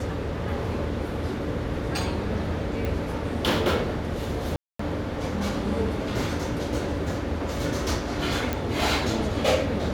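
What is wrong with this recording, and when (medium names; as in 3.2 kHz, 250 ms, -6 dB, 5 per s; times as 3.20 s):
2.85 s: pop
4.56–4.79 s: dropout 234 ms
8.53 s: pop -12 dBFS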